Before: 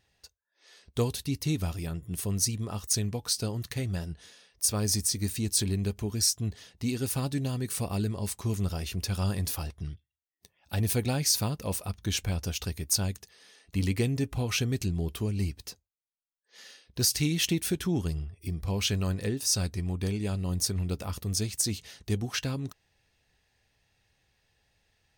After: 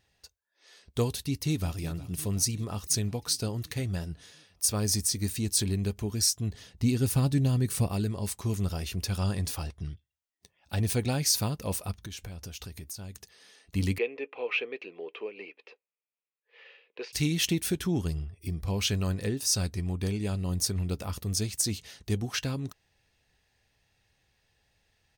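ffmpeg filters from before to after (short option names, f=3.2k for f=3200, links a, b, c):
-filter_complex "[0:a]asplit=2[a][b];[b]afade=t=in:st=1.1:d=0.01,afade=t=out:st=1.79:d=0.01,aecho=0:1:360|720|1080|1440|1800|2160|2520|2880:0.158489|0.110943|0.0776598|0.0543618|0.0380533|0.0266373|0.0186461|0.0130523[c];[a][c]amix=inputs=2:normalize=0,asettb=1/sr,asplit=3[d][e][f];[d]atrim=end=6.544[g];[e]atrim=start=6.54:end=7.87,asetpts=PTS-STARTPTS,afade=t=in:d=0.004:c=qsin,afade=t=out:st=1.326:d=0.004:c=qsin,lowshelf=f=210:g=9.5[h];[f]atrim=start=7.866[i];[g][h]acrossfade=d=0.004:c1=hsin:c2=qsin[j];[j][i]acrossfade=d=0.004:c1=qsin:c2=hsin,asettb=1/sr,asplit=3[k][l][m];[k]atrim=end=9.184[n];[l]atrim=start=9.18:end=11.12,asetpts=PTS-STARTPTS,afade=t=in:d=0.004:c=qsin,afade=t=out:st=1.936:d=0.004:c=qsin,equalizer=f=13k:t=o:w=0.28:g=-14[o];[m]atrim=start=11.116[p];[n][o]acrossfade=d=0.004:c1=hsin:c2=qsin[q];[q][p]acrossfade=d=0.004:c1=qsin:c2=hsin,asettb=1/sr,asplit=3[r][s][t];[r]atrim=end=12.024[u];[s]atrim=start=12.02:end=13.15,asetpts=PTS-STARTPTS,afade=t=in:d=0.004:c=qsin,afade=t=out:st=1.126:d=0.004:c=qsin,acompressor=threshold=-37dB:ratio=8:attack=3.2:release=140:knee=1:detection=peak[v];[t]atrim=start=13.146[w];[u][v]acrossfade=d=0.004:c1=hsin:c2=qsin[x];[x][w]acrossfade=d=0.004:c1=qsin:c2=hsin,asettb=1/sr,asplit=3[y][z][aa];[y]atrim=end=13.984[ab];[z]atrim=start=13.98:end=17.13,asetpts=PTS-STARTPTS,afade=t=in:d=0.004:c=qsin,afade=t=out:st=3.146:d=0.004:c=qsin,highpass=f=420:w=0.5412,highpass=f=420:w=1.3066,equalizer=f=470:t=q:w=4:g=8,equalizer=f=700:t=q:w=4:g=-5,equalizer=f=1.5k:t=q:w=4:g=-5,equalizer=f=2.5k:t=q:w=4:g=9,lowpass=f=2.7k:w=0.5412,lowpass=f=2.7k:w=1.3066[ac];[aa]atrim=start=17.126[ad];[ab][ac]acrossfade=d=0.004:c1=hsin:c2=qsin[ae];[ae][ad]acrossfade=d=0.004:c1=qsin:c2=hsin"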